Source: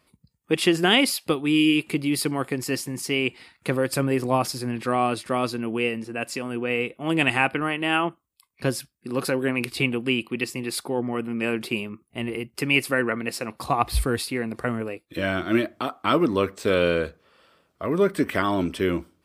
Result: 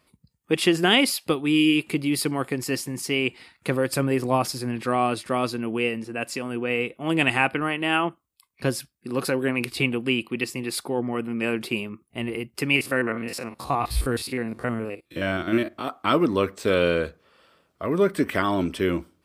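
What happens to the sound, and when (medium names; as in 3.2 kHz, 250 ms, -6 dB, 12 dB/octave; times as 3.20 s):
12.76–15.88 s: spectrogram pixelated in time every 50 ms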